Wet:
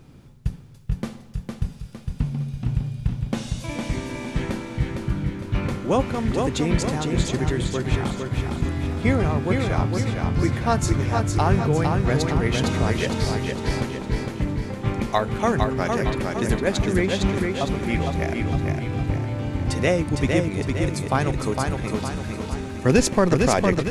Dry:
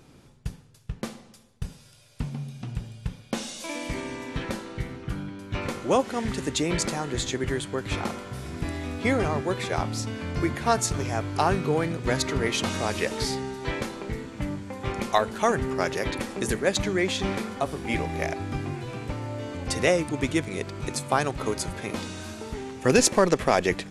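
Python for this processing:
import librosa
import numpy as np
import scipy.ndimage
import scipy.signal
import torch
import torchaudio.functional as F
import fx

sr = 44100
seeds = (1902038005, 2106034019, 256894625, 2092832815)

p1 = fx.bass_treble(x, sr, bass_db=8, treble_db=-4)
p2 = fx.quant_dither(p1, sr, seeds[0], bits=12, dither='none')
y = p2 + fx.echo_feedback(p2, sr, ms=458, feedback_pct=47, wet_db=-4, dry=0)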